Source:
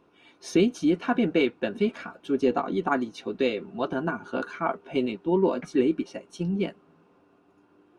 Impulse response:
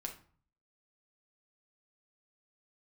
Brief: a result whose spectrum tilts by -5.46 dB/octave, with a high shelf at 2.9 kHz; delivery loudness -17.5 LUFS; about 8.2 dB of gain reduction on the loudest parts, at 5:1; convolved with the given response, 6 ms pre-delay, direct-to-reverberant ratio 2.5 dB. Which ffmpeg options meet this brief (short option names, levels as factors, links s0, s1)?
-filter_complex "[0:a]highshelf=f=2900:g=5.5,acompressor=threshold=0.0501:ratio=5,asplit=2[s0][s1];[1:a]atrim=start_sample=2205,adelay=6[s2];[s1][s2]afir=irnorm=-1:irlink=0,volume=0.891[s3];[s0][s3]amix=inputs=2:normalize=0,volume=4.22"